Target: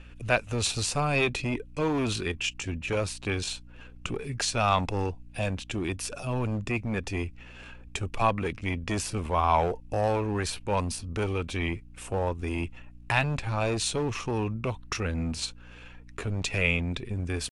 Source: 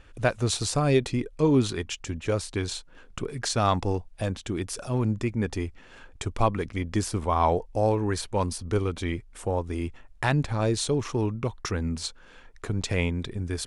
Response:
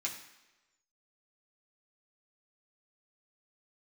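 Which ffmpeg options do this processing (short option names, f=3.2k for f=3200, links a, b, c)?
-filter_complex "[0:a]equalizer=f=2.6k:t=o:w=0.34:g=10,atempo=0.78,acrossover=split=640[a][b];[a]asoftclip=type=hard:threshold=-27dB[c];[c][b]amix=inputs=2:normalize=0,aeval=exprs='val(0)+0.00355*(sin(2*PI*60*n/s)+sin(2*PI*2*60*n/s)/2+sin(2*PI*3*60*n/s)/3+sin(2*PI*4*60*n/s)/4+sin(2*PI*5*60*n/s)/5)':c=same" -ar 32000 -c:a libvorbis -b:a 96k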